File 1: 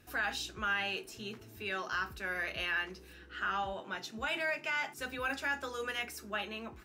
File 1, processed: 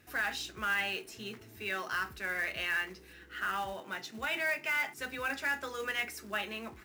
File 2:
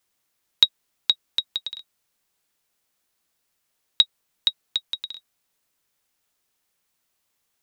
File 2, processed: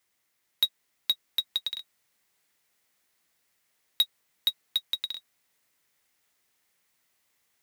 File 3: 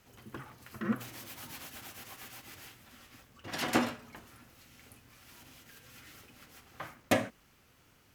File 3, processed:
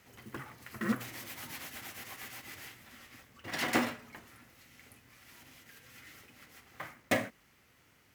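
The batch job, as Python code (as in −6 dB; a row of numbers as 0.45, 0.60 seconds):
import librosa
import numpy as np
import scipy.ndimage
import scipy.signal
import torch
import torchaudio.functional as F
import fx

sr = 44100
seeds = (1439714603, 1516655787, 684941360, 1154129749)

p1 = fx.highpass(x, sr, hz=63.0, slope=6)
p2 = fx.peak_eq(p1, sr, hz=2000.0, db=6.5, octaves=0.37)
p3 = fx.rider(p2, sr, range_db=3, speed_s=2.0)
p4 = p2 + (p3 * 10.0 ** (0.5 / 20.0))
p5 = 10.0 ** (-10.0 / 20.0) * np.tanh(p4 / 10.0 ** (-10.0 / 20.0))
p6 = fx.quant_float(p5, sr, bits=2)
y = p6 * 10.0 ** (-6.5 / 20.0)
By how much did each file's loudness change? +1.5, −6.0, −0.5 LU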